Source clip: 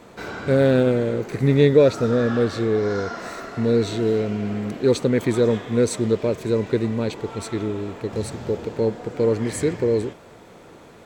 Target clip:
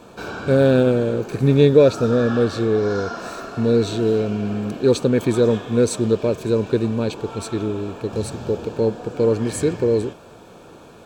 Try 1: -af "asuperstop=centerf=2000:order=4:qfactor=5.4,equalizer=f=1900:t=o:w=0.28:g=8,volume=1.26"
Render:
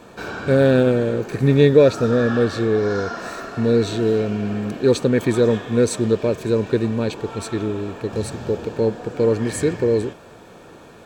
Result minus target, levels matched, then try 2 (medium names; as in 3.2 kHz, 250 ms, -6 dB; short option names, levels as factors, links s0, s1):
2 kHz band +3.0 dB
-af "asuperstop=centerf=2000:order=4:qfactor=5.4,equalizer=f=1900:t=o:w=0.28:g=-2,volume=1.26"